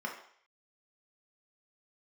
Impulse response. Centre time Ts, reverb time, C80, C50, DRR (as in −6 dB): 26 ms, 0.60 s, 10.0 dB, 6.5 dB, −1.0 dB